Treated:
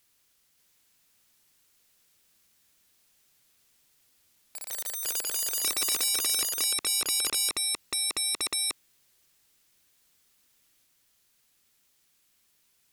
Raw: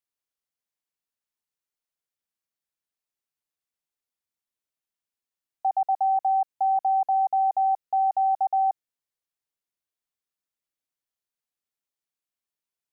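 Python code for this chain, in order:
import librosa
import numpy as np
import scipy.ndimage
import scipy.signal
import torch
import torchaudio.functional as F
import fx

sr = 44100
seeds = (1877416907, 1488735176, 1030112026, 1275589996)

y = fx.peak_eq(x, sr, hz=710.0, db=-7.0, octaves=2.1)
y = fx.fold_sine(y, sr, drive_db=19, ceiling_db=-25.0)
y = fx.echo_pitch(y, sr, ms=576, semitones=4, count=3, db_per_echo=-3.0)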